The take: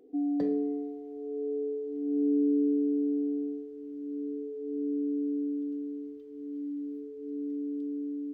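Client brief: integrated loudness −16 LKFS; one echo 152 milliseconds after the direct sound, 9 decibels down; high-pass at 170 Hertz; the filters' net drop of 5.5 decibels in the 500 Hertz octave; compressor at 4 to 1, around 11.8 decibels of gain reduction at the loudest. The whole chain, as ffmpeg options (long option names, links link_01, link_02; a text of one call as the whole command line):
ffmpeg -i in.wav -af "highpass=170,equalizer=frequency=500:width_type=o:gain=-6.5,acompressor=threshold=-41dB:ratio=4,aecho=1:1:152:0.355,volume=26dB" out.wav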